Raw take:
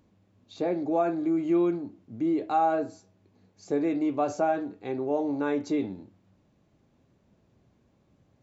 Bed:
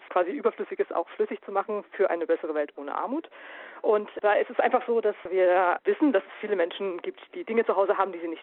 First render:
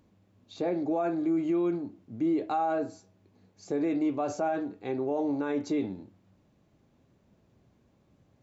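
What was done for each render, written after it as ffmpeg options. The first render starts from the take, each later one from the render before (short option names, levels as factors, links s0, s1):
-af "alimiter=limit=0.0891:level=0:latency=1:release=42"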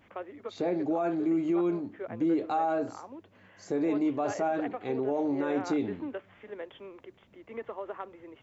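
-filter_complex "[1:a]volume=0.168[s0];[0:a][s0]amix=inputs=2:normalize=0"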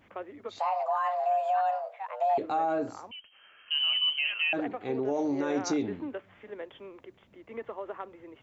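-filter_complex "[0:a]asettb=1/sr,asplit=3[s0][s1][s2];[s0]atrim=end=0.594[s3];[s1]atrim=start=0.59:end=2.38,asetpts=PTS-STARTPTS,afade=t=in:d=0.004:c=qsin,afade=t=out:st=1.786:d=0.004:c=qsin,afreqshift=380[s4];[s2]atrim=start=2.376[s5];[s3][s4]acrossfade=d=0.004:c1=hsin:c2=qsin[s6];[s6][s5]acrossfade=d=0.004:c1=qsin:c2=hsin,asettb=1/sr,asplit=3[s7][s8][s9];[s7]atrim=end=3.114[s10];[s8]atrim=start=3.11:end=4.53,asetpts=PTS-STARTPTS,afade=t=in:d=0.004:c=qsin,afade=t=out:st=1.416:d=0.004:c=qsin,lowpass=f=2800:t=q:w=0.5098,lowpass=f=2800:t=q:w=0.6013,lowpass=f=2800:t=q:w=0.9,lowpass=f=2800:t=q:w=2.563,afreqshift=-3300[s11];[s9]atrim=start=4.526[s12];[s10][s11]acrossfade=d=0.004:c1=hsin:c2=qsin[s13];[s13][s12]acrossfade=d=0.004:c1=qsin:c2=hsin,asettb=1/sr,asplit=3[s14][s15][s16];[s14]atrim=end=5.054[s17];[s15]atrim=start=5.05:end=5.83,asetpts=PTS-STARTPTS,afade=t=in:d=0.004:c=qsin,afade=t=out:st=0.776:d=0.004:c=qsin,lowpass=f=5900:t=q:w=5.8[s18];[s16]atrim=start=5.826[s19];[s17][s18]acrossfade=d=0.004:c1=hsin:c2=qsin[s20];[s20][s19]acrossfade=d=0.004:c1=qsin:c2=hsin"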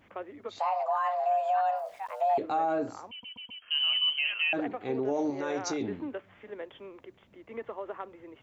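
-filter_complex "[0:a]asplit=3[s0][s1][s2];[s0]afade=t=out:st=1.75:d=0.02[s3];[s1]aeval=exprs='val(0)*gte(abs(val(0)),0.00237)':c=same,afade=t=in:st=1.75:d=0.02,afade=t=out:st=2.37:d=0.02[s4];[s2]afade=t=in:st=2.37:d=0.02[s5];[s3][s4][s5]amix=inputs=3:normalize=0,asettb=1/sr,asplit=3[s6][s7][s8];[s6]atrim=end=5.304[s9];[s7]atrim=start=5.3:end=5.81,asetpts=PTS-STARTPTS,afade=t=in:d=0.004:c=qsin,afade=t=out:st=0.506:d=0.004:c=qsin,equalizer=f=230:t=o:w=0.79:g=-12[s10];[s8]atrim=start=5.806[s11];[s9][s10]acrossfade=d=0.004:c1=hsin:c2=qsin[s12];[s12][s11]acrossfade=d=0.004:c1=qsin:c2=hsin,asplit=5[s13][s14][s15][s16][s17];[s13]atrim=end=3.232[s18];[s14]atrim=start=3.098:end=3.232[s19];[s15]atrim=start=3.098:end=3.232[s20];[s16]atrim=start=3.098:end=3.232[s21];[s17]atrim=start=3.618[s22];[s18][s19]acrossfade=d=0.004:c1=hsin:c2=hsin[s23];[s23][s20]acrossfade=d=0.004:c1=hsin:c2=hsin[s24];[s24][s21]acrossfade=d=0.004:c1=hsin:c2=hsin[s25];[s25][s22]acrossfade=d=0.004:c1=hsin:c2=hsin"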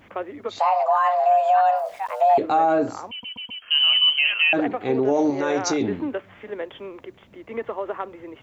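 -af "volume=2.99"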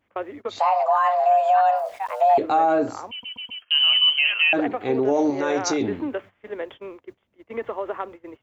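-af "agate=range=0.1:threshold=0.0126:ratio=16:detection=peak,equalizer=f=170:w=2.3:g=-4.5"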